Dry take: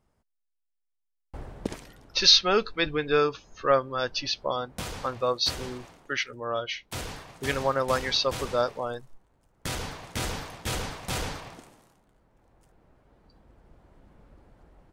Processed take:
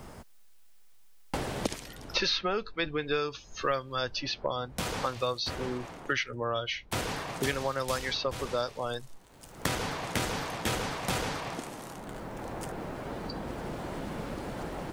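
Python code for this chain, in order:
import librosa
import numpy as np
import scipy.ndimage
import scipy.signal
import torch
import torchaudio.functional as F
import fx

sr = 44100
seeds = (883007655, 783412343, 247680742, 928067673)

y = fx.band_squash(x, sr, depth_pct=100)
y = y * 10.0 ** (-3.0 / 20.0)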